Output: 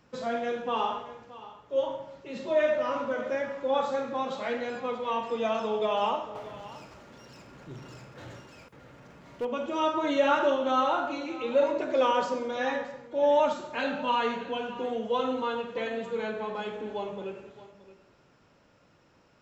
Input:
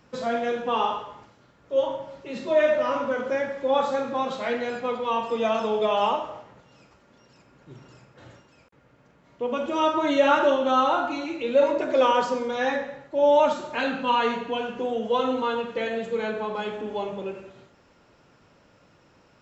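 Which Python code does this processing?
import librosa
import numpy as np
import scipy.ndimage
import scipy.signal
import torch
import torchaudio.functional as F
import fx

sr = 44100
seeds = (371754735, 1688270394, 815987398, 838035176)

y = fx.power_curve(x, sr, exponent=0.7, at=(6.35, 9.45))
y = y + 10.0 ** (-17.0 / 20.0) * np.pad(y, (int(623 * sr / 1000.0), 0))[:len(y)]
y = y * 10.0 ** (-4.5 / 20.0)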